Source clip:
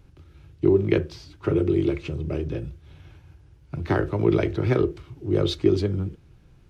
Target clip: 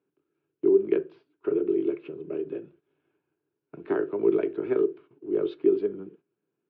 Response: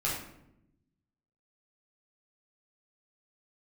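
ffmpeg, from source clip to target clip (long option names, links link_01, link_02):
-af "agate=range=-13dB:threshold=-41dB:ratio=16:detection=peak,equalizer=frequency=400:width_type=o:width=0.58:gain=13,dynaudnorm=framelen=230:gausssize=13:maxgain=11.5dB,highpass=frequency=230:width=0.5412,highpass=frequency=230:width=1.3066,equalizer=frequency=240:width_type=q:width=4:gain=-4,equalizer=frequency=360:width_type=q:width=4:gain=-7,equalizer=frequency=530:width_type=q:width=4:gain=-8,equalizer=frequency=800:width_type=q:width=4:gain=-7,equalizer=frequency=1200:width_type=q:width=4:gain=-4,equalizer=frequency=2000:width_type=q:width=4:gain=-10,lowpass=frequency=2400:width=0.5412,lowpass=frequency=2400:width=1.3066,volume=-2.5dB"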